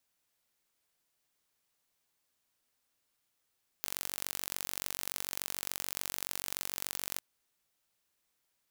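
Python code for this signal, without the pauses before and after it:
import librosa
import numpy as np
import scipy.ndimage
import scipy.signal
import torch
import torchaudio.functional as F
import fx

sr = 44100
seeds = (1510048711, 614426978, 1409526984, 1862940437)

y = fx.impulse_train(sr, length_s=3.36, per_s=46.9, accent_every=2, level_db=-7.5)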